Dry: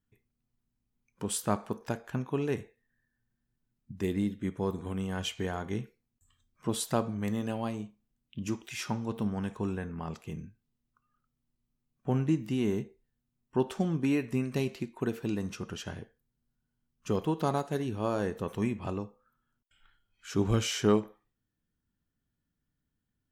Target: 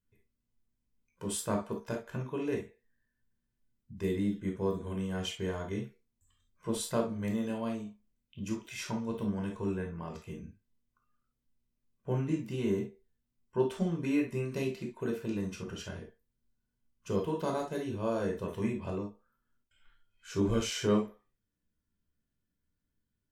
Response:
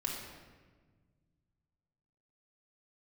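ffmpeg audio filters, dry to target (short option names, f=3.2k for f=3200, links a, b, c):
-filter_complex "[1:a]atrim=start_sample=2205,afade=t=out:st=0.17:d=0.01,atrim=end_sample=7938,asetrate=74970,aresample=44100[a];[0:a][a]afir=irnorm=-1:irlink=0"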